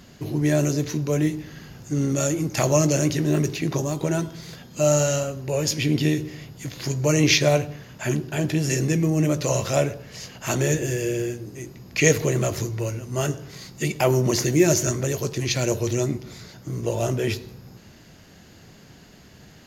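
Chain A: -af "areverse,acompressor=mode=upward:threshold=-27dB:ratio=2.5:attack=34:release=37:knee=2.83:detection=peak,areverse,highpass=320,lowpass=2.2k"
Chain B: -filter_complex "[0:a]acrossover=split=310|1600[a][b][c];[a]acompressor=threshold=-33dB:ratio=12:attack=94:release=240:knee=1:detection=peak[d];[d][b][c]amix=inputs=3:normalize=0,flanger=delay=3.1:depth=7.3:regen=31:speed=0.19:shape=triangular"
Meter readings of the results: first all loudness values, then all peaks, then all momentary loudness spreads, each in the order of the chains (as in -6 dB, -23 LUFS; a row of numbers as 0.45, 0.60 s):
-27.5, -29.0 LUFS; -8.0, -9.5 dBFS; 16, 15 LU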